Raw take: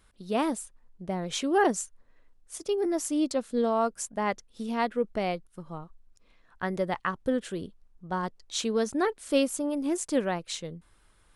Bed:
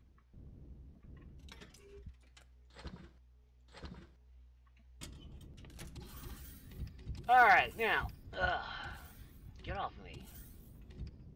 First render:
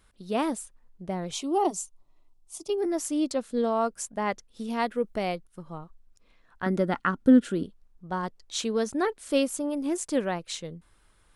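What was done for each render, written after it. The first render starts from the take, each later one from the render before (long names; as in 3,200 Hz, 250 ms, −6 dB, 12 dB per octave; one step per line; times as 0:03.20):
0:01.31–0:02.70: phaser with its sweep stopped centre 330 Hz, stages 8
0:04.70–0:05.36: high-shelf EQ 8,100 Hz +9 dB
0:06.66–0:07.63: hollow resonant body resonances 250/1,400 Hz, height 13 dB, ringing for 30 ms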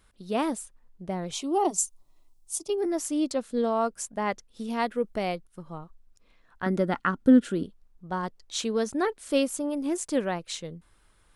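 0:01.78–0:02.59: bass and treble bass +1 dB, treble +10 dB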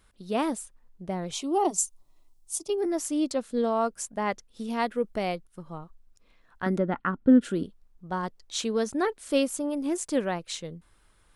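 0:06.78–0:07.41: high-frequency loss of the air 420 metres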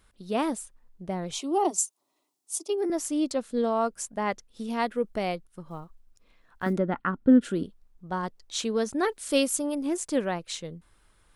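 0:01.39–0:02.90: high-pass filter 230 Hz 24 dB per octave
0:05.66–0:06.73: one scale factor per block 7 bits
0:09.03–0:09.75: high-shelf EQ 3,000 Hz +7.5 dB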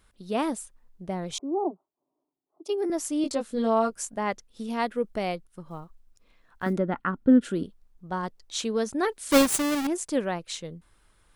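0:01.38–0:02.65: Gaussian smoothing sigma 10 samples
0:03.22–0:04.18: double-tracking delay 18 ms −4 dB
0:09.31–0:09.87: each half-wave held at its own peak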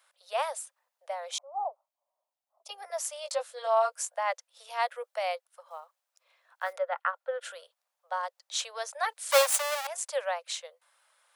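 Butterworth high-pass 520 Hz 96 dB per octave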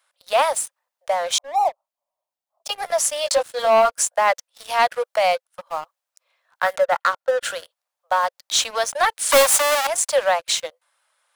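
in parallel at −1 dB: downward compressor, threshold −38 dBFS, peak gain reduction 19.5 dB
on the sum: leveller curve on the samples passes 3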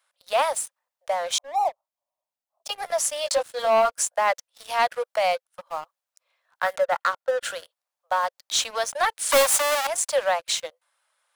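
level −4 dB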